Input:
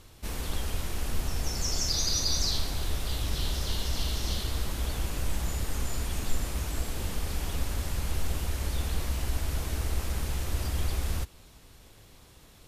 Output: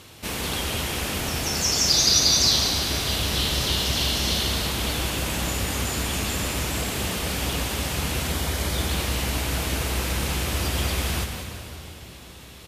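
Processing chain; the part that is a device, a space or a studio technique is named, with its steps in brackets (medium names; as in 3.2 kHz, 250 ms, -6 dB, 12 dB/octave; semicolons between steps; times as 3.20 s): PA in a hall (high-pass 110 Hz 12 dB/octave; peaking EQ 2.8 kHz +4.5 dB 1 oct; delay 186 ms -9 dB; reverberation RT60 3.4 s, pre-delay 73 ms, DRR 6.5 dB); 8.31–8.91 s: band-stop 2.7 kHz, Q 8.9; trim +8.5 dB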